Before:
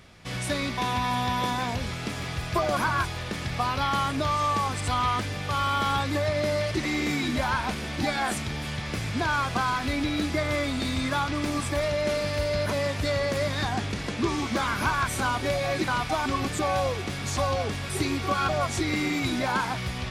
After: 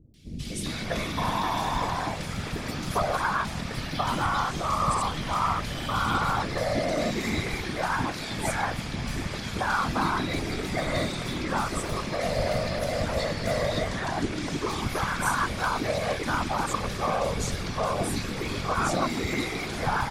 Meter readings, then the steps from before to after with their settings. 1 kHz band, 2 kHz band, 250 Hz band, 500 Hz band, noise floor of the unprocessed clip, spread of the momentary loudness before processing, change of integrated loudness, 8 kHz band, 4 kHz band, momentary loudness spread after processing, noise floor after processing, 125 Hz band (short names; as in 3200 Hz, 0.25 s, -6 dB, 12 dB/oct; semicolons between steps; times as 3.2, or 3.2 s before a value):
-0.5 dB, -1.5 dB, -2.0 dB, -1.0 dB, -34 dBFS, 5 LU, -1.0 dB, 0.0 dB, -2.0 dB, 6 LU, -35 dBFS, -1.5 dB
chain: whisperiser; three bands offset in time lows, highs, mids 0.14/0.4 s, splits 360/2700 Hz